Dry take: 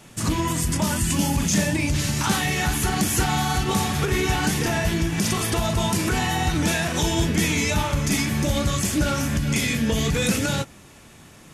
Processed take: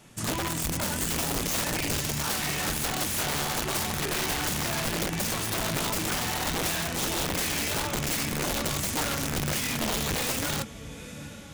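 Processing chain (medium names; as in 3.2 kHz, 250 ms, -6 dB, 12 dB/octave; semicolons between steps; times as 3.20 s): echo that smears into a reverb 821 ms, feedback 59%, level -15 dB; integer overflow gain 17 dB; trim -6 dB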